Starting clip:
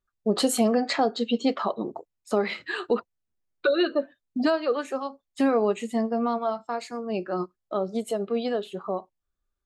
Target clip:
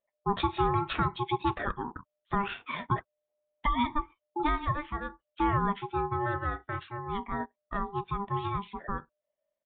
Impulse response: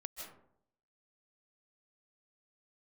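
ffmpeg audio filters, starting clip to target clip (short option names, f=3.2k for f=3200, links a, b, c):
-af "aeval=exprs='val(0)*sin(2*PI*600*n/s)':c=same,aresample=8000,aresample=44100,volume=-2dB"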